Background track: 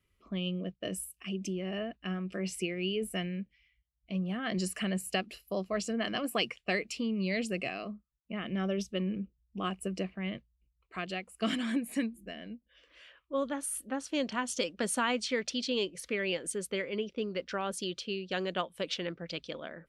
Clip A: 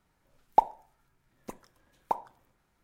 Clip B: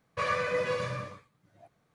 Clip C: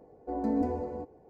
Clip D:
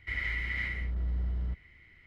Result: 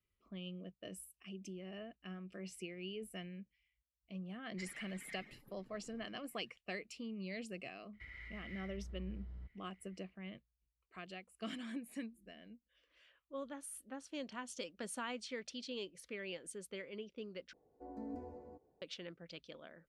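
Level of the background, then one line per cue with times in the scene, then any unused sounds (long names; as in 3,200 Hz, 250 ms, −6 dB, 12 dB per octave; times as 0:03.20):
background track −12.5 dB
0:04.51: mix in D −9.5 dB + harmonic-percussive split with one part muted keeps percussive
0:07.93: mix in D −16 dB + brickwall limiter −26.5 dBFS
0:17.53: overwrite with C −17 dB
not used: A, B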